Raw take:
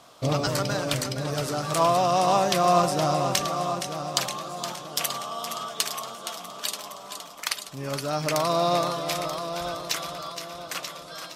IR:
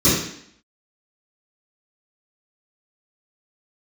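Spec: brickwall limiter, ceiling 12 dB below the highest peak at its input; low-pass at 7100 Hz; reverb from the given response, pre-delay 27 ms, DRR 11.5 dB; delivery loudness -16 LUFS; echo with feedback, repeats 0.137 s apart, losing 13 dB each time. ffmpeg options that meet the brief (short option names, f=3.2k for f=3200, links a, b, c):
-filter_complex "[0:a]lowpass=7.1k,alimiter=limit=-16dB:level=0:latency=1,aecho=1:1:137|274|411:0.224|0.0493|0.0108,asplit=2[a][b];[1:a]atrim=start_sample=2205,adelay=27[c];[b][c]afir=irnorm=-1:irlink=0,volume=-32dB[d];[a][d]amix=inputs=2:normalize=0,volume=11.5dB"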